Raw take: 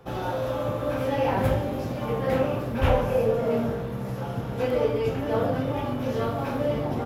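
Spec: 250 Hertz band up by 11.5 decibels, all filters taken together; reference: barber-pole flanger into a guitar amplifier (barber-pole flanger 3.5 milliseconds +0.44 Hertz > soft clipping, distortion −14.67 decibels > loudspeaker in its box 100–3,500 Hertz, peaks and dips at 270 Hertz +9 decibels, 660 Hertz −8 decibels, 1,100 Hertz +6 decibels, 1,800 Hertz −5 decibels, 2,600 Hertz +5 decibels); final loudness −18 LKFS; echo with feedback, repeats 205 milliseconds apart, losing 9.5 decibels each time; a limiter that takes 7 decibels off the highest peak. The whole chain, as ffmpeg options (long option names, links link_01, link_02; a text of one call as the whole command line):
ffmpeg -i in.wav -filter_complex "[0:a]equalizer=frequency=250:width_type=o:gain=6.5,alimiter=limit=-15dB:level=0:latency=1,aecho=1:1:205|410|615|820:0.335|0.111|0.0365|0.012,asplit=2[link_01][link_02];[link_02]adelay=3.5,afreqshift=0.44[link_03];[link_01][link_03]amix=inputs=2:normalize=1,asoftclip=threshold=-23dB,highpass=100,equalizer=frequency=270:width_type=q:width=4:gain=9,equalizer=frequency=660:width_type=q:width=4:gain=-8,equalizer=frequency=1100:width_type=q:width=4:gain=6,equalizer=frequency=1800:width_type=q:width=4:gain=-5,equalizer=frequency=2600:width_type=q:width=4:gain=5,lowpass=frequency=3500:width=0.5412,lowpass=frequency=3500:width=1.3066,volume=9dB" out.wav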